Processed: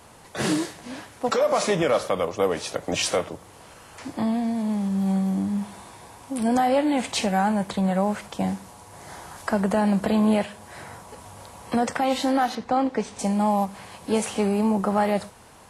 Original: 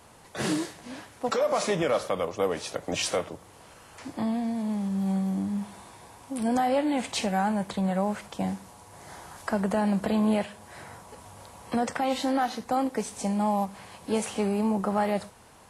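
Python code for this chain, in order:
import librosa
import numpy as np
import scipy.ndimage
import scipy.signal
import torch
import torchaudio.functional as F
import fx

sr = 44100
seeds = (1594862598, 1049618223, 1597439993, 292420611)

y = fx.lowpass(x, sr, hz=4600.0, slope=12, at=(12.55, 13.19))
y = y * librosa.db_to_amplitude(4.0)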